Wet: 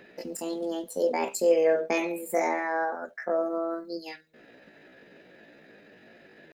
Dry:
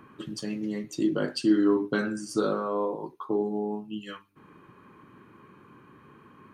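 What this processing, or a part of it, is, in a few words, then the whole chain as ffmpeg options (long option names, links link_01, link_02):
chipmunk voice: -filter_complex "[0:a]asettb=1/sr,asplit=3[link_01][link_02][link_03];[link_01]atrim=end=3.374[link_04];[link_02]atrim=start=3.37:end=4,asetpts=PTS-STARTPTS,afade=type=in:duration=0.004:curve=qsin,afade=type=out:start_time=0.626:duration=0.004:curve=qsin,highshelf=frequency=4100:gain=7[link_05];[link_03]atrim=start=3.996[link_06];[link_04][link_05]acrossfade=duration=0.004:curve1=hsin:curve2=qsin[link_07];[link_07][link_06]acrossfade=duration=0.004:curve1=qsin:curve2=hsin,asetrate=70004,aresample=44100,atempo=0.629961"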